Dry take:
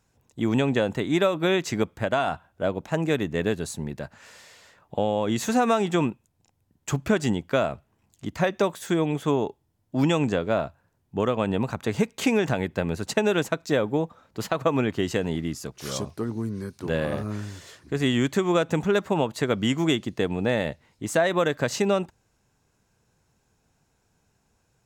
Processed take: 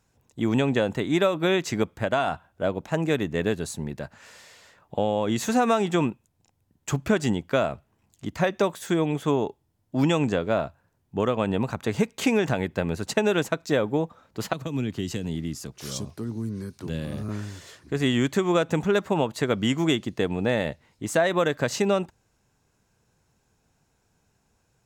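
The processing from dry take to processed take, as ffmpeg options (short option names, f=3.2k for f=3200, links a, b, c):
-filter_complex "[0:a]asettb=1/sr,asplit=3[a][b][c];[a]atrim=end=14.534[d];[b]atrim=start=14.53:end=17.29,asetpts=PTS-STARTPTS,afade=t=in:d=0.004:c=qsin,afade=t=out:st=2.756:d=0.004:c=qsin,acrossover=split=300|3000[e][f][g];[f]acompressor=threshold=-41dB:ratio=5:attack=3.2:release=140:knee=2.83:detection=peak[h];[e][h][g]amix=inputs=3:normalize=0[i];[c]atrim=start=17.286[j];[d][i]acrossfade=d=0.004:c1=hsin:c2=qsin[k];[k][j]acrossfade=d=0.004:c1=qsin:c2=hsin"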